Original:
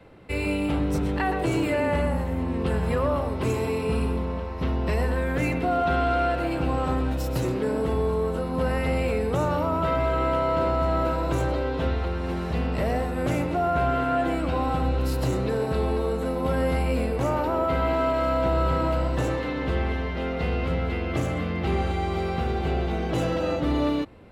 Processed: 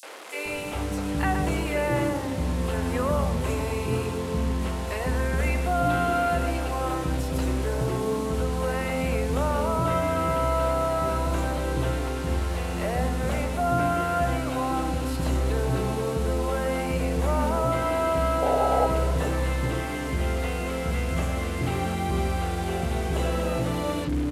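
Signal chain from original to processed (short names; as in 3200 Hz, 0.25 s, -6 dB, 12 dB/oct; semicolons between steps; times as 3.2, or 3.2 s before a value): delta modulation 64 kbps, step -32 dBFS; painted sound noise, 18.39–18.84, 400–860 Hz -22 dBFS; three bands offset in time highs, mids, lows 30/450 ms, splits 390/5400 Hz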